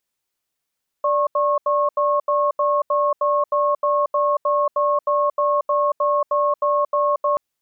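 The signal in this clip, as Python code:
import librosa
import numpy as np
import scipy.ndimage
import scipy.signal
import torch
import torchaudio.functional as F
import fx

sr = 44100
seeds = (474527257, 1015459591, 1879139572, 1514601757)

y = fx.cadence(sr, length_s=6.33, low_hz=586.0, high_hz=1090.0, on_s=0.23, off_s=0.08, level_db=-18.5)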